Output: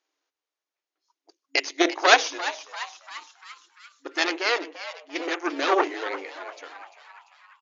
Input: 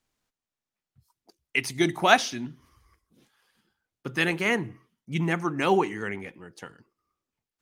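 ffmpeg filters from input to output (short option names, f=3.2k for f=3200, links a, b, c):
-filter_complex "[0:a]aeval=exprs='0.75*(cos(1*acos(clip(val(0)/0.75,-1,1)))-cos(1*PI/2))+0.188*(cos(8*acos(clip(val(0)/0.75,-1,1)))-cos(8*PI/2))':c=same,afftfilt=real='re*between(b*sr/4096,270,6900)':imag='im*between(b*sr/4096,270,6900)':win_size=4096:overlap=0.75,asplit=7[a][b][c][d][e][f][g];[b]adelay=344,afreqshift=140,volume=-13.5dB[h];[c]adelay=688,afreqshift=280,volume=-18.7dB[i];[d]adelay=1032,afreqshift=420,volume=-23.9dB[j];[e]adelay=1376,afreqshift=560,volume=-29.1dB[k];[f]adelay=1720,afreqshift=700,volume=-34.3dB[l];[g]adelay=2064,afreqshift=840,volume=-39.5dB[m];[a][h][i][j][k][l][m]amix=inputs=7:normalize=0,volume=1dB"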